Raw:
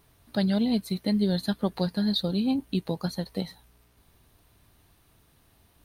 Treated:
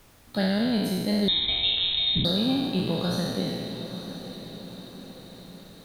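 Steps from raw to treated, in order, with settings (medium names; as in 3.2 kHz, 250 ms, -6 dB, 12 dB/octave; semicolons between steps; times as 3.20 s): spectral sustain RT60 1.91 s; added noise pink -55 dBFS; on a send: echo that smears into a reverb 915 ms, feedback 52%, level -11.5 dB; 1.28–2.25 s: on the sum: frequency inversion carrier 3.9 kHz; trim -1.5 dB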